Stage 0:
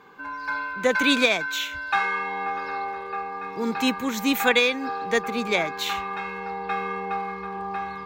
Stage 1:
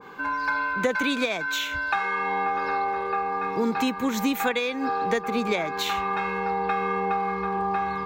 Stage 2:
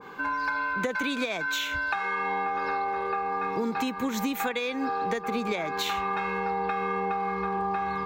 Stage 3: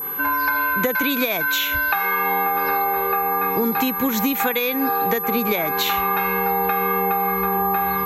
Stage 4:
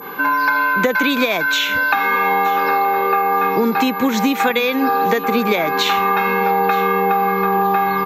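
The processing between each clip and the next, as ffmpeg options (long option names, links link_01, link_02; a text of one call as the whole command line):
ffmpeg -i in.wav -af "acompressor=threshold=-28dB:ratio=6,adynamicequalizer=threshold=0.00562:dfrequency=1500:dqfactor=0.7:tfrequency=1500:tqfactor=0.7:attack=5:release=100:ratio=0.375:range=2:mode=cutabove:tftype=highshelf,volume=7dB" out.wav
ffmpeg -i in.wav -af "acompressor=threshold=-25dB:ratio=6" out.wav
ffmpeg -i in.wav -af "aeval=exprs='val(0)+0.0224*sin(2*PI*12000*n/s)':channel_layout=same,volume=7.5dB" out.wav
ffmpeg -i in.wav -af "highpass=150,lowpass=6200,aecho=1:1:922|1844:0.126|0.0327,volume=5dB" out.wav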